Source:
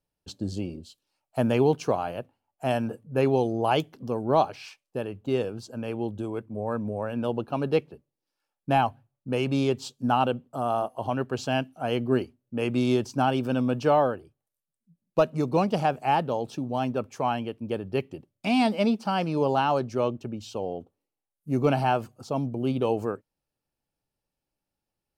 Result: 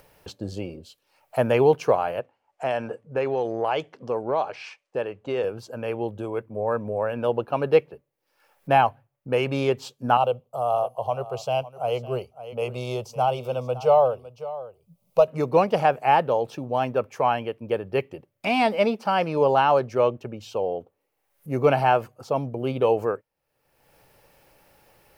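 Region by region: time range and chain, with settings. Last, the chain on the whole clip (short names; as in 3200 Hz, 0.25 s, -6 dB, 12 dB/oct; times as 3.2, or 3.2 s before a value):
2.2–5.44 LPF 8200 Hz 24 dB/oct + low shelf 130 Hz -10.5 dB + compressor 5:1, threshold -24 dBFS
10.17–15.28 bell 910 Hz -3.5 dB 0.39 oct + fixed phaser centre 710 Hz, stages 4 + echo 0.557 s -16.5 dB
whole clip: high shelf 2200 Hz +9 dB; upward compressor, threshold -34 dBFS; ten-band EQ 125 Hz +4 dB, 250 Hz -3 dB, 500 Hz +10 dB, 1000 Hz +5 dB, 2000 Hz +7 dB, 4000 Hz -4 dB, 8000 Hz -7 dB; gain -4 dB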